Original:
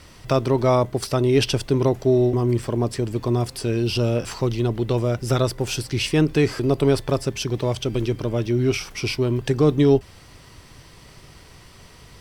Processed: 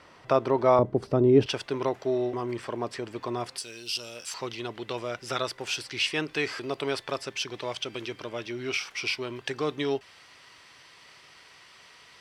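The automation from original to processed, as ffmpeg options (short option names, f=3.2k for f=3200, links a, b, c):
-af "asetnsamples=n=441:p=0,asendcmd='0.79 bandpass f 320;1.46 bandpass f 1600;3.58 bandpass f 7100;4.34 bandpass f 2300',bandpass=f=930:t=q:w=0.67:csg=0"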